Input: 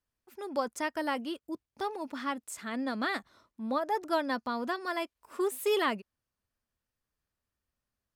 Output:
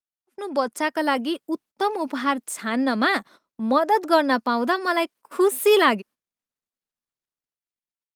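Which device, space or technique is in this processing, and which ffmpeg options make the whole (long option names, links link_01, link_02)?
video call: -af "highpass=frequency=170:width=0.5412,highpass=frequency=170:width=1.3066,dynaudnorm=framelen=230:gausssize=9:maxgain=3.5dB,agate=range=-20dB:threshold=-51dB:ratio=16:detection=peak,volume=8dB" -ar 48000 -c:a libopus -b:a 32k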